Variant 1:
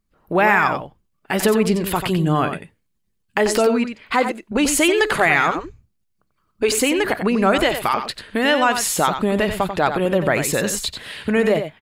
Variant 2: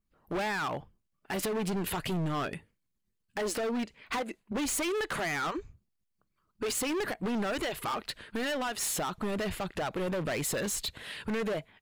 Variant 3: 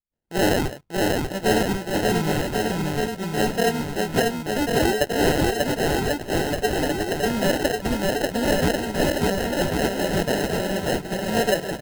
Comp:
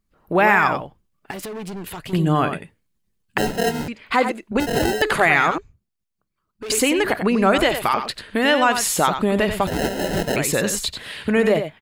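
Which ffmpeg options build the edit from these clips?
-filter_complex "[1:a]asplit=2[a][b];[2:a]asplit=3[c][d][e];[0:a]asplit=6[f][g][h][i][j][k];[f]atrim=end=1.312[l];[a]atrim=start=1.308:end=2.132[m];[g]atrim=start=2.128:end=3.382[n];[c]atrim=start=3.378:end=3.882[o];[h]atrim=start=3.878:end=4.602[p];[d]atrim=start=4.598:end=5.022[q];[i]atrim=start=5.018:end=5.582[r];[b]atrim=start=5.578:end=6.702[s];[j]atrim=start=6.698:end=9.672[t];[e]atrim=start=9.668:end=10.362[u];[k]atrim=start=10.358[v];[l][m]acrossfade=d=0.004:c1=hsin:c2=hsin[w];[w][n]acrossfade=d=0.004:c1=hsin:c2=hsin[x];[x][o]acrossfade=d=0.004:c1=hsin:c2=hsin[y];[y][p]acrossfade=d=0.004:c1=hsin:c2=hsin[z];[z][q]acrossfade=d=0.004:c1=hsin:c2=hsin[aa];[aa][r]acrossfade=d=0.004:c1=hsin:c2=hsin[ab];[ab][s]acrossfade=d=0.004:c1=hsin:c2=hsin[ac];[ac][t]acrossfade=d=0.004:c1=hsin:c2=hsin[ad];[ad][u]acrossfade=d=0.004:c1=hsin:c2=hsin[ae];[ae][v]acrossfade=d=0.004:c1=hsin:c2=hsin"

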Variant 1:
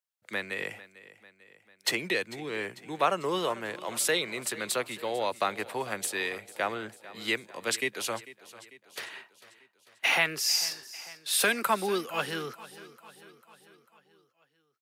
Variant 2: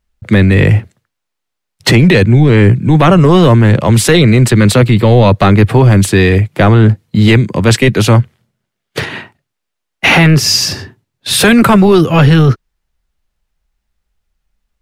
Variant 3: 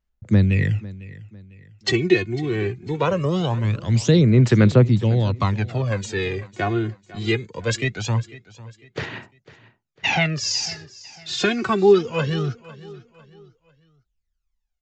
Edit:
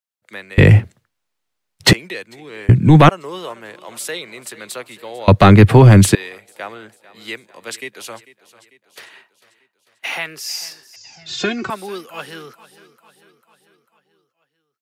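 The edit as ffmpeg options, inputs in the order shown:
-filter_complex "[1:a]asplit=3[a][b][c];[0:a]asplit=5[d][e][f][g][h];[d]atrim=end=0.582[i];[a]atrim=start=0.578:end=1.932[j];[e]atrim=start=1.928:end=2.692[k];[b]atrim=start=2.688:end=3.092[l];[f]atrim=start=3.088:end=5.282[m];[c]atrim=start=5.278:end=6.152[n];[g]atrim=start=6.148:end=10.962[o];[2:a]atrim=start=10.958:end=11.702[p];[h]atrim=start=11.698[q];[i][j]acrossfade=d=0.004:c1=hsin:c2=hsin[r];[r][k]acrossfade=d=0.004:c1=hsin:c2=hsin[s];[s][l]acrossfade=d=0.004:c1=hsin:c2=hsin[t];[t][m]acrossfade=d=0.004:c1=hsin:c2=hsin[u];[u][n]acrossfade=d=0.004:c1=hsin:c2=hsin[v];[v][o]acrossfade=d=0.004:c1=hsin:c2=hsin[w];[w][p]acrossfade=d=0.004:c1=hsin:c2=hsin[x];[x][q]acrossfade=d=0.004:c1=hsin:c2=hsin"

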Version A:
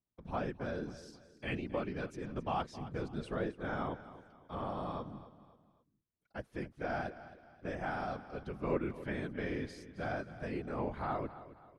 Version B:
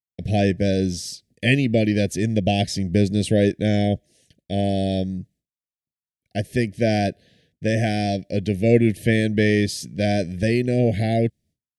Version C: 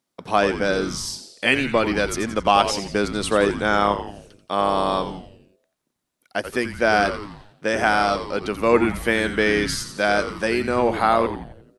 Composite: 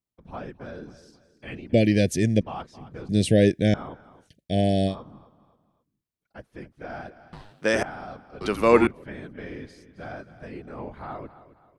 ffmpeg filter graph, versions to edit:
-filter_complex "[1:a]asplit=3[a][b][c];[2:a]asplit=2[d][e];[0:a]asplit=6[f][g][h][i][j][k];[f]atrim=end=1.732[l];[a]atrim=start=1.728:end=2.412[m];[g]atrim=start=2.408:end=3.092[n];[b]atrim=start=3.088:end=3.742[o];[h]atrim=start=3.738:end=4.3[p];[c]atrim=start=4.2:end=4.96[q];[i]atrim=start=4.86:end=7.332[r];[d]atrim=start=7.328:end=7.832[s];[j]atrim=start=7.828:end=8.412[t];[e]atrim=start=8.408:end=8.872[u];[k]atrim=start=8.868[v];[l][m]acrossfade=d=0.004:c1=hsin:c2=hsin[w];[w][n]acrossfade=d=0.004:c1=hsin:c2=hsin[x];[x][o]acrossfade=d=0.004:c1=hsin:c2=hsin[y];[y][p]acrossfade=d=0.004:c1=hsin:c2=hsin[z];[z][q]acrossfade=d=0.1:c1=tri:c2=tri[aa];[aa][r]acrossfade=d=0.1:c1=tri:c2=tri[ab];[ab][s]acrossfade=d=0.004:c1=hsin:c2=hsin[ac];[ac][t]acrossfade=d=0.004:c1=hsin:c2=hsin[ad];[ad][u]acrossfade=d=0.004:c1=hsin:c2=hsin[ae];[ae][v]acrossfade=d=0.004:c1=hsin:c2=hsin"

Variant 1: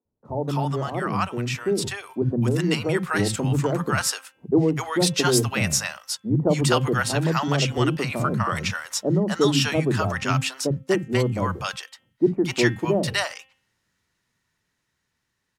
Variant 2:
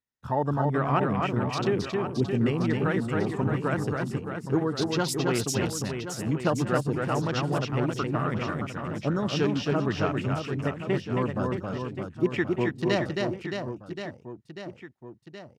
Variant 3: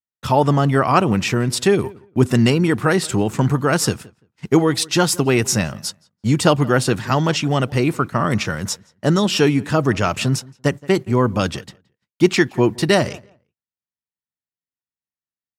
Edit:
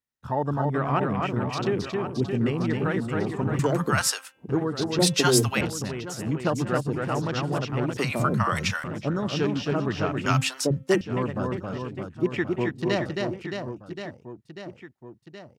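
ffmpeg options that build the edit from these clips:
-filter_complex "[0:a]asplit=4[a][b][c][d];[1:a]asplit=5[e][f][g][h][i];[e]atrim=end=3.592[j];[a]atrim=start=3.588:end=4.492[k];[f]atrim=start=4.488:end=4.992[l];[b]atrim=start=4.988:end=5.612[m];[g]atrim=start=5.608:end=7.972[n];[c]atrim=start=7.968:end=8.842[o];[h]atrim=start=8.838:end=10.262[p];[d]atrim=start=10.258:end=11.012[q];[i]atrim=start=11.008[r];[j][k]acrossfade=d=0.004:c1=hsin:c2=hsin[s];[s][l]acrossfade=d=0.004:c1=hsin:c2=hsin[t];[t][m]acrossfade=d=0.004:c1=hsin:c2=hsin[u];[u][n]acrossfade=d=0.004:c1=hsin:c2=hsin[v];[v][o]acrossfade=d=0.004:c1=hsin:c2=hsin[w];[w][p]acrossfade=d=0.004:c1=hsin:c2=hsin[x];[x][q]acrossfade=d=0.004:c1=hsin:c2=hsin[y];[y][r]acrossfade=d=0.004:c1=hsin:c2=hsin"

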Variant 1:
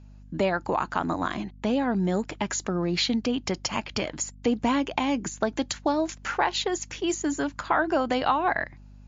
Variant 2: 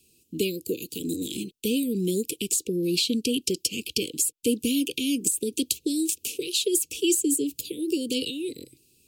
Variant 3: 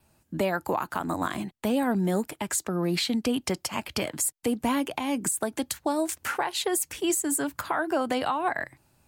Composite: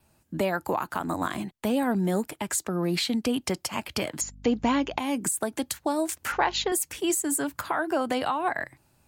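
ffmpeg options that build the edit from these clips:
-filter_complex "[0:a]asplit=2[a][b];[2:a]asplit=3[c][d][e];[c]atrim=end=4.212[f];[a]atrim=start=4.208:end=4.982[g];[d]atrim=start=4.978:end=6.322[h];[b]atrim=start=6.318:end=6.722[i];[e]atrim=start=6.718[j];[f][g]acrossfade=d=0.004:c1=hsin:c2=hsin[k];[k][h]acrossfade=d=0.004:c1=hsin:c2=hsin[l];[l][i]acrossfade=d=0.004:c1=hsin:c2=hsin[m];[m][j]acrossfade=d=0.004:c1=hsin:c2=hsin"

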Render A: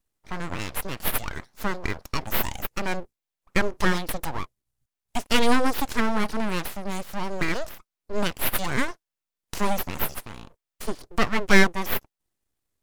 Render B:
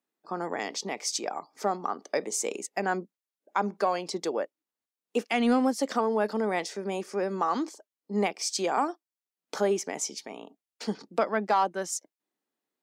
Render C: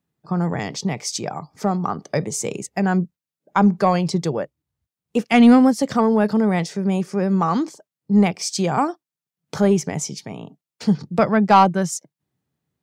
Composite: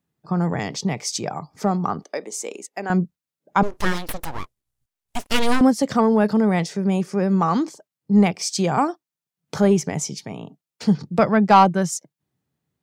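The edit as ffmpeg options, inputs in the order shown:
-filter_complex "[2:a]asplit=3[a][b][c];[a]atrim=end=2.042[d];[1:a]atrim=start=2.038:end=2.902[e];[b]atrim=start=2.898:end=3.632[f];[0:a]atrim=start=3.628:end=5.612[g];[c]atrim=start=5.608[h];[d][e]acrossfade=d=0.004:c1=hsin:c2=hsin[i];[i][f]acrossfade=d=0.004:c1=hsin:c2=hsin[j];[j][g]acrossfade=d=0.004:c1=hsin:c2=hsin[k];[k][h]acrossfade=d=0.004:c1=hsin:c2=hsin"

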